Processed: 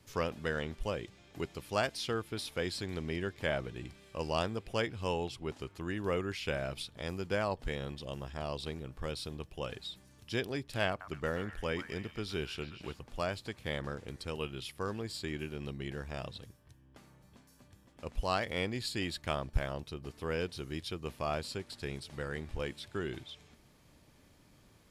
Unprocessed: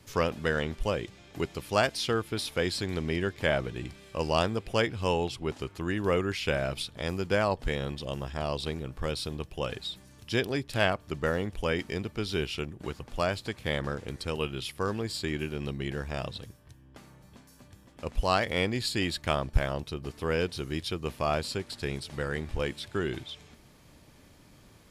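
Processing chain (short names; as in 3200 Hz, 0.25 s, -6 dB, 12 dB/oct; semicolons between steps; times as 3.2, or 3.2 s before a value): 10.88–12.96 delay with a stepping band-pass 0.125 s, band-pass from 1300 Hz, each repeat 0.7 oct, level -6.5 dB; gain -6.5 dB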